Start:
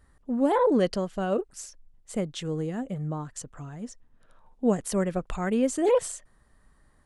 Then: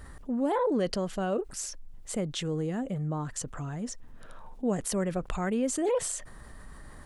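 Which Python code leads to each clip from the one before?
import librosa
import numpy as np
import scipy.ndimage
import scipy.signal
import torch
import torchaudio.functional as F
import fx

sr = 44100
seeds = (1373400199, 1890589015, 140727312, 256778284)

y = fx.env_flatten(x, sr, amount_pct=50)
y = y * 10.0 ** (-6.5 / 20.0)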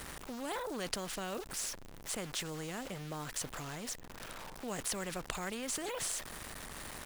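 y = np.where(np.abs(x) >= 10.0 ** (-46.5 / 20.0), x, 0.0)
y = fx.spectral_comp(y, sr, ratio=2.0)
y = y * 10.0 ** (1.5 / 20.0)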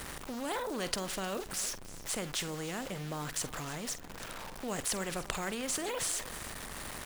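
y = fx.doubler(x, sr, ms=47.0, db=-14)
y = y + 10.0 ** (-17.5 / 20.0) * np.pad(y, (int(309 * sr / 1000.0), 0))[:len(y)]
y = y * 10.0 ** (3.0 / 20.0)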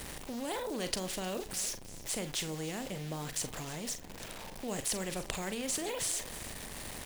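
y = fx.peak_eq(x, sr, hz=1300.0, db=-7.5, octaves=0.82)
y = fx.doubler(y, sr, ms=38.0, db=-12.0)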